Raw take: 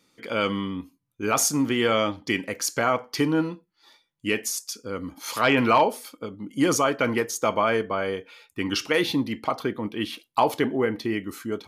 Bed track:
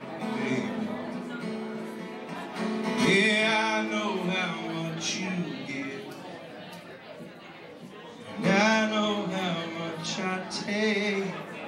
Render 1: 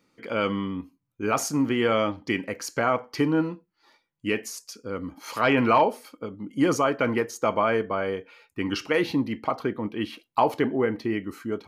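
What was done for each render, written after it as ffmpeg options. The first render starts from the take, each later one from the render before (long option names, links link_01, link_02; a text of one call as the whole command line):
ffmpeg -i in.wav -af "equalizer=frequency=11000:width=0.3:gain=-10,bandreject=frequency=3500:width=9.8" out.wav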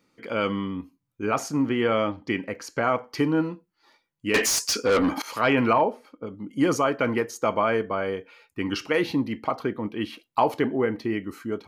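ffmpeg -i in.wav -filter_complex "[0:a]asettb=1/sr,asplit=3[link_01][link_02][link_03];[link_01]atrim=end=1.254[link_04];[link_02]atrim=start=1.25:end=2.84,asetpts=PTS-STARTPTS,afade=type=in:duration=0.004:curve=qsin,afade=type=out:start_time=1.586:duration=0.004:curve=qsin,highshelf=frequency=5600:gain=-10[link_05];[link_03]atrim=start=2.836[link_06];[link_04][link_05]acrossfade=duration=0.004:curve1=hsin:curve2=qsin[link_07];[link_07][link_06]acrossfade=duration=0.004:curve1=qsin:curve2=hsin,asettb=1/sr,asplit=3[link_08][link_09][link_10];[link_08]atrim=end=4.344[link_11];[link_09]atrim=start=4.34:end=5.22,asetpts=PTS-STARTPTS,afade=type=in:duration=0.004:curve=qsin,afade=type=out:start_time=0.876:duration=0.004:curve=qsin,asplit=2[link_12][link_13];[link_13]highpass=frequency=720:poles=1,volume=31dB,asoftclip=type=tanh:threshold=-11.5dB[link_14];[link_12][link_14]amix=inputs=2:normalize=0,lowpass=frequency=5300:poles=1,volume=-6dB[link_15];[link_10]atrim=start=5.216[link_16];[link_11][link_15]acrossfade=duration=0.004:curve1=hsin:curve2=qsin[link_17];[link_17][link_16]acrossfade=duration=0.004:curve1=qsin:curve2=hsin,asettb=1/sr,asplit=3[link_18][link_19][link_20];[link_18]atrim=end=5.734[link_21];[link_19]atrim=start=5.73:end=6.27,asetpts=PTS-STARTPTS,afade=type=in:duration=0.004:curve=qsin,afade=type=out:start_time=0.536:duration=0.004:curve=qsin,lowpass=frequency=1200:poles=1[link_22];[link_20]atrim=start=6.266[link_23];[link_21][link_22]acrossfade=duration=0.004:curve1=hsin:curve2=qsin[link_24];[link_24][link_23]acrossfade=duration=0.004:curve1=qsin:curve2=hsin" out.wav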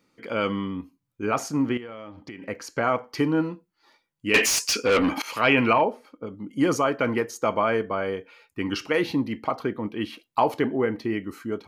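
ffmpeg -i in.wav -filter_complex "[0:a]asettb=1/sr,asplit=3[link_01][link_02][link_03];[link_01]atrim=end=1.774[link_04];[link_02]atrim=start=1.77:end=2.42,asetpts=PTS-STARTPTS,afade=type=in:duration=0.004:curve=qsin,afade=type=out:start_time=0.646:duration=0.004:curve=qsin,acompressor=threshold=-36dB:ratio=6:attack=3.2:release=140:knee=1:detection=peak[link_05];[link_03]atrim=start=2.416[link_06];[link_04][link_05]acrossfade=duration=0.004:curve1=hsin:curve2=qsin[link_07];[link_07][link_06]acrossfade=duration=0.004:curve1=qsin:curve2=hsin,asettb=1/sr,asplit=3[link_08][link_09][link_10];[link_08]atrim=end=4.314[link_11];[link_09]atrim=start=4.31:end=5.85,asetpts=PTS-STARTPTS,afade=type=in:duration=0.004:curve=qsin,afade=type=out:start_time=1.536:duration=0.004:curve=qsin,equalizer=frequency=2600:width_type=o:width=0.56:gain=8[link_12];[link_10]atrim=start=5.846[link_13];[link_11][link_12]acrossfade=duration=0.004:curve1=hsin:curve2=qsin[link_14];[link_14][link_13]acrossfade=duration=0.004:curve1=qsin:curve2=hsin" out.wav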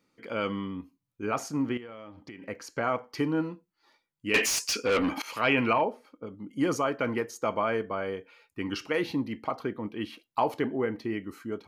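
ffmpeg -i in.wav -af "volume=-5dB" out.wav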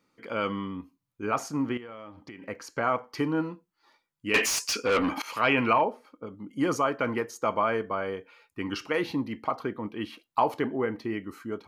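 ffmpeg -i in.wav -af "equalizer=frequency=1100:width=1.5:gain=4" out.wav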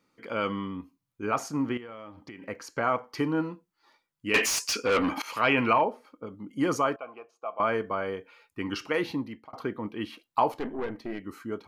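ffmpeg -i in.wav -filter_complex "[0:a]asettb=1/sr,asplit=3[link_01][link_02][link_03];[link_01]atrim=end=6.964[link_04];[link_02]atrim=start=6.96:end=7.6,asetpts=PTS-STARTPTS,afade=type=in:duration=0.004:curve=qsin,afade=type=out:start_time=0.636:duration=0.004:curve=qsin,asplit=3[link_05][link_06][link_07];[link_05]bandpass=frequency=730:width_type=q:width=8,volume=0dB[link_08];[link_06]bandpass=frequency=1090:width_type=q:width=8,volume=-6dB[link_09];[link_07]bandpass=frequency=2440:width_type=q:width=8,volume=-9dB[link_10];[link_08][link_09][link_10]amix=inputs=3:normalize=0[link_11];[link_03]atrim=start=7.596[link_12];[link_04][link_11]acrossfade=duration=0.004:curve1=hsin:curve2=qsin[link_13];[link_13][link_12]acrossfade=duration=0.004:curve1=qsin:curve2=hsin,asettb=1/sr,asplit=3[link_14][link_15][link_16];[link_14]atrim=end=10.524[link_17];[link_15]atrim=start=10.52:end=11.25,asetpts=PTS-STARTPTS,afade=type=in:duration=0.004:curve=qsin,afade=type=out:start_time=0.726:duration=0.004:curve=qsin,aeval=exprs='(tanh(20*val(0)+0.65)-tanh(0.65))/20':channel_layout=same[link_18];[link_16]atrim=start=11.246[link_19];[link_17][link_18]acrossfade=duration=0.004:curve1=hsin:curve2=qsin[link_20];[link_20][link_19]acrossfade=duration=0.004:curve1=qsin:curve2=hsin,asplit=2[link_21][link_22];[link_21]atrim=end=9.53,asetpts=PTS-STARTPTS,afade=type=out:start_time=8.93:duration=0.6:curve=qsin[link_23];[link_22]atrim=start=9.53,asetpts=PTS-STARTPTS,afade=type=in:duration=0.004:curve=hsin[link_24];[link_23][link_24]concat=n=2:v=0:a=1" out.wav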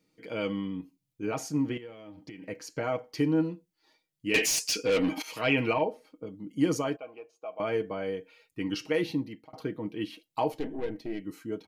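ffmpeg -i in.wav -af "equalizer=frequency=1200:width=1.4:gain=-14,aecho=1:1:6.4:0.49" out.wav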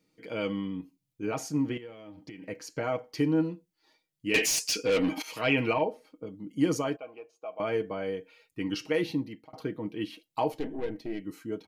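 ffmpeg -i in.wav -af anull out.wav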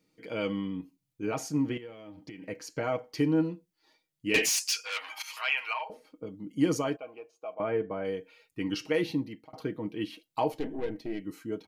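ffmpeg -i in.wav -filter_complex "[0:a]asettb=1/sr,asplit=3[link_01][link_02][link_03];[link_01]atrim=end=4.494[link_04];[link_02]atrim=start=4.49:end=5.9,asetpts=PTS-STARTPTS,afade=type=in:duration=0.004:curve=qsin,afade=type=out:start_time=1.406:duration=0.004:curve=qsin,highpass=frequency=940:width=0.5412,highpass=frequency=940:width=1.3066[link_05];[link_03]atrim=start=5.896[link_06];[link_04][link_05]acrossfade=duration=0.004:curve1=hsin:curve2=qsin[link_07];[link_07][link_06]acrossfade=duration=0.004:curve1=qsin:curve2=hsin,asettb=1/sr,asplit=3[link_08][link_09][link_10];[link_08]atrim=end=7.544[link_11];[link_09]atrim=start=7.54:end=8.05,asetpts=PTS-STARTPTS,afade=type=in:duration=0.004:curve=qsin,afade=type=out:start_time=0.506:duration=0.004:curve=qsin,lowpass=1900[link_12];[link_10]atrim=start=8.046[link_13];[link_11][link_12]acrossfade=duration=0.004:curve1=hsin:curve2=qsin[link_14];[link_14][link_13]acrossfade=duration=0.004:curve1=qsin:curve2=hsin" out.wav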